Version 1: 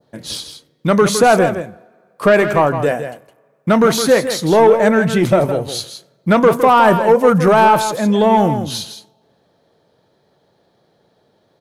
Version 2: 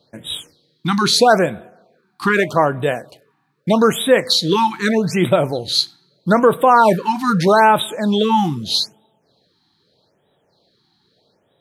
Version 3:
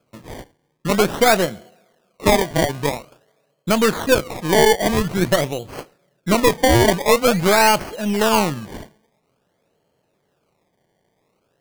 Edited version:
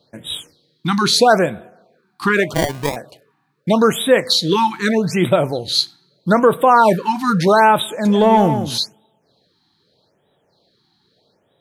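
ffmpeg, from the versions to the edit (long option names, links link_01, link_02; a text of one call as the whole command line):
ffmpeg -i take0.wav -i take1.wav -i take2.wav -filter_complex "[1:a]asplit=3[link_01][link_02][link_03];[link_01]atrim=end=2.542[link_04];[2:a]atrim=start=2.538:end=2.962[link_05];[link_02]atrim=start=2.958:end=8.052[link_06];[0:a]atrim=start=8.048:end=8.782[link_07];[link_03]atrim=start=8.778[link_08];[link_04][link_05]acrossfade=duration=0.004:curve1=hsin:curve2=hsin[link_09];[link_09][link_06]acrossfade=duration=0.004:curve1=hsin:curve2=hsin[link_10];[link_10][link_07]acrossfade=duration=0.004:curve1=hsin:curve2=hsin[link_11];[link_11][link_08]acrossfade=duration=0.004:curve1=hsin:curve2=hsin" out.wav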